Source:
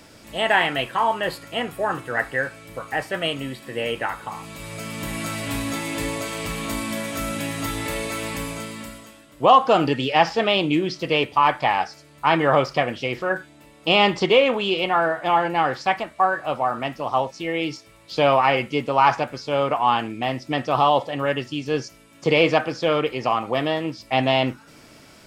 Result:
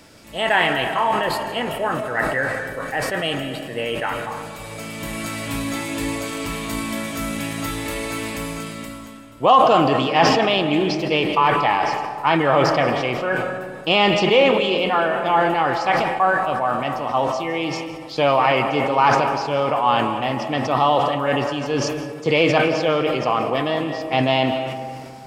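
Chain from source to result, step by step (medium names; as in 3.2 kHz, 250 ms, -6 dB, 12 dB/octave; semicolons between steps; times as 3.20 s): on a send at -8 dB: reverberation RT60 2.6 s, pre-delay 115 ms; on the sum: decay stretcher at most 33 dB/s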